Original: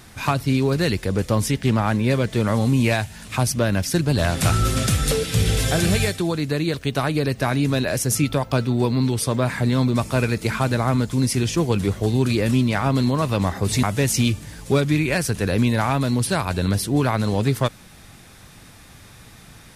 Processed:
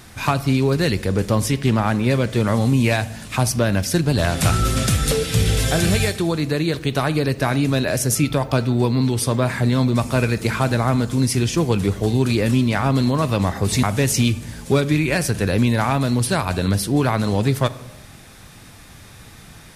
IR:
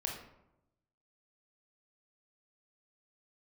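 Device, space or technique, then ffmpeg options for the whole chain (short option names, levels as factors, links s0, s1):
compressed reverb return: -filter_complex "[0:a]asplit=2[s0][s1];[1:a]atrim=start_sample=2205[s2];[s1][s2]afir=irnorm=-1:irlink=0,acompressor=threshold=0.126:ratio=6,volume=0.335[s3];[s0][s3]amix=inputs=2:normalize=0"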